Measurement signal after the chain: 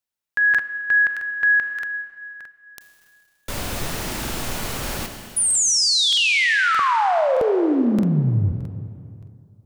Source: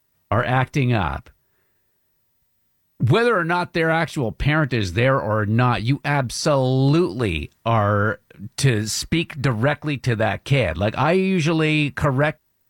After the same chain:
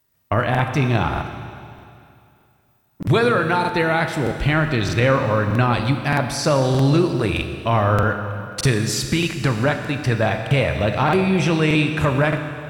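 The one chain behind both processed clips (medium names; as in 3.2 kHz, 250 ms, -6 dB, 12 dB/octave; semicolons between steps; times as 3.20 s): Schroeder reverb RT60 2.5 s, combs from 26 ms, DRR 6 dB; crackling interface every 0.62 s, samples 2048, repeat, from 0.50 s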